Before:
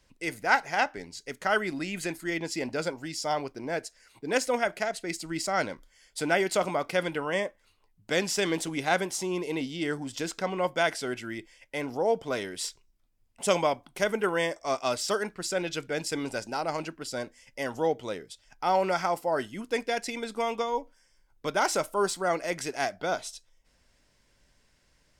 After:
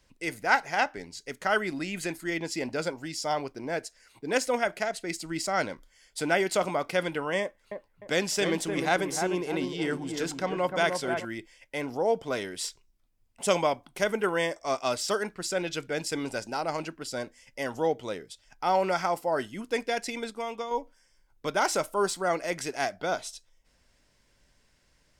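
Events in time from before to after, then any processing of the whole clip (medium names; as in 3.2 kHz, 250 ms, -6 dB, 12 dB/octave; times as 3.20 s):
7.41–11.25 s: feedback echo behind a low-pass 303 ms, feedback 33%, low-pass 1.6 kHz, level -5 dB
20.30–20.71 s: gain -5 dB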